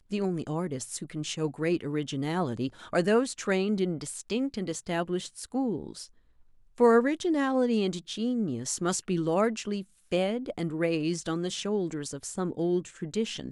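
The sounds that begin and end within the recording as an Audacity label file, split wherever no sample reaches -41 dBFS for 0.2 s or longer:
6.780000	9.830000	sound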